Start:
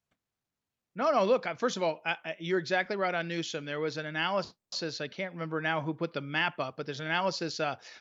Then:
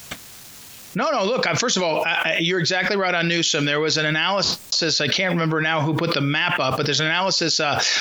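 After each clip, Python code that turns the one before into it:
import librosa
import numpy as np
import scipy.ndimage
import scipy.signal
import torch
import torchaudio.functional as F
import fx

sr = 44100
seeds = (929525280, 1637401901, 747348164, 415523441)

y = fx.high_shelf(x, sr, hz=2300.0, db=12.0)
y = fx.env_flatten(y, sr, amount_pct=100)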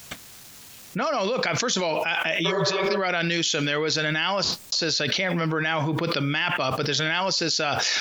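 y = fx.spec_repair(x, sr, seeds[0], start_s=2.48, length_s=0.48, low_hz=250.0, high_hz=2100.0, source='after')
y = y * librosa.db_to_amplitude(-4.0)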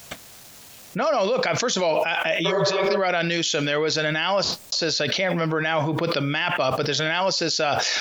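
y = fx.peak_eq(x, sr, hz=620.0, db=5.5, octaves=0.91)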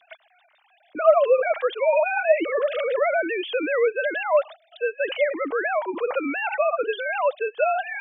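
y = fx.sine_speech(x, sr)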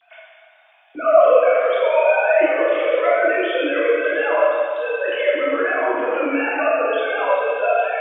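y = fx.rev_plate(x, sr, seeds[1], rt60_s=2.2, hf_ratio=0.85, predelay_ms=0, drr_db=-8.5)
y = y * librosa.db_to_amplitude(-4.0)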